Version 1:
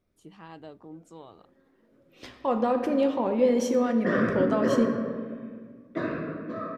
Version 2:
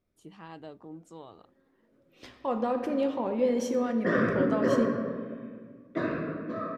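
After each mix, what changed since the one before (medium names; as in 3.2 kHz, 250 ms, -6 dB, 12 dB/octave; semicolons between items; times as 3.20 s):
second voice -4.0 dB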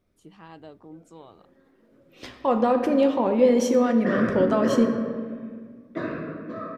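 second voice +8.0 dB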